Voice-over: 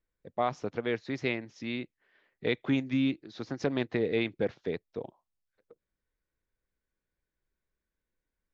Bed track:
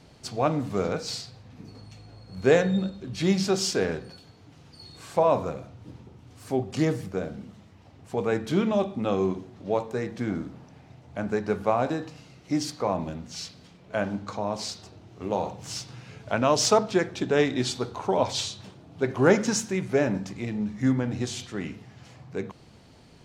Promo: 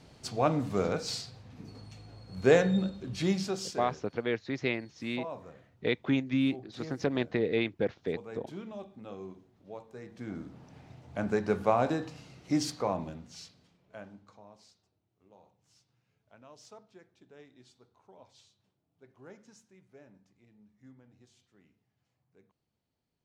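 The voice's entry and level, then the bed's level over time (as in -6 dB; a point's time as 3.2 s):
3.40 s, 0.0 dB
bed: 3.12 s -2.5 dB
4.06 s -18.5 dB
9.86 s -18.5 dB
10.78 s -2 dB
12.69 s -2 dB
15.03 s -32 dB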